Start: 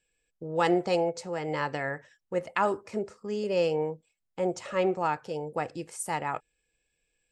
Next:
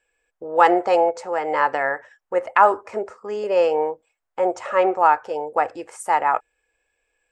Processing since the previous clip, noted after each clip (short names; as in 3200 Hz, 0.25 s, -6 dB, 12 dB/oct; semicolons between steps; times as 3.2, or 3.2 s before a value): EQ curve 100 Hz 0 dB, 160 Hz -14 dB, 240 Hz -1 dB, 810 Hz +14 dB, 1500 Hz +12 dB, 4100 Hz -2 dB, 7300 Hz +1 dB, 11000 Hz -3 dB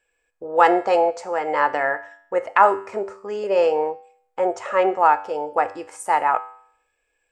resonator 98 Hz, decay 0.61 s, harmonics all, mix 60%; gain +6.5 dB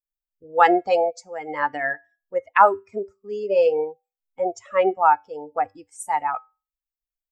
per-bin expansion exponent 2; gain +2.5 dB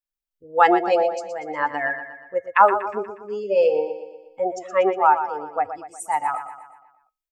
feedback echo 0.12 s, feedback 51%, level -10.5 dB